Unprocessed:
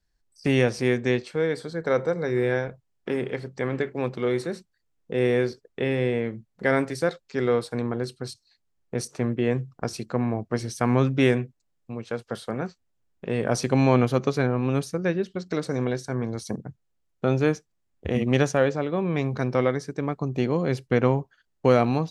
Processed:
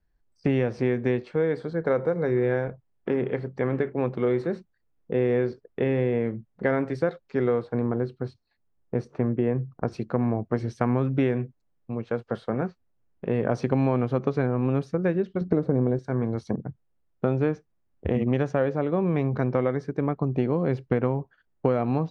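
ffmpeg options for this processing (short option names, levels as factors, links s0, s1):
-filter_complex "[0:a]asettb=1/sr,asplit=3[s0][s1][s2];[s0]atrim=end=7.624[s3];[s1]atrim=start=7.62:end=9.92,asetpts=PTS-STARTPTS,afade=t=in:d=0.004:c=qsin,afade=t=out:st=2.296:d=0.004:c=qsin,lowpass=f=2200:p=1[s4];[s2]atrim=start=9.916[s5];[s3][s4]acrossfade=d=0.004:c1=hsin:c2=qsin[s6];[s6][s5]acrossfade=d=0.004:c1=qsin:c2=hsin,asettb=1/sr,asplit=3[s7][s8][s9];[s7]atrim=end=15.414[s10];[s8]atrim=start=15.41:end=15.99,asetpts=PTS-STARTPTS,afade=t=in:d=0.004:c=qsin,afade=t=out:st=0.576:d=0.004:c=qsin,tiltshelf=f=1300:g=9.5[s11];[s9]atrim=start=15.986[s12];[s10][s11]acrossfade=d=0.004:c1=hsin:c2=qsin[s13];[s13][s12]acrossfade=d=0.004:c1=qsin:c2=hsin,lowpass=f=1500:p=1,aemphasis=mode=reproduction:type=50fm,acompressor=threshold=0.0794:ratio=6,volume=1.41"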